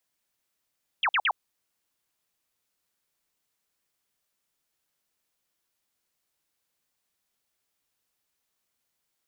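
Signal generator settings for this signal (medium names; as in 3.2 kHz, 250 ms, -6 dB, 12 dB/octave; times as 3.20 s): burst of laser zaps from 3.5 kHz, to 710 Hz, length 0.06 s sine, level -21 dB, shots 3, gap 0.05 s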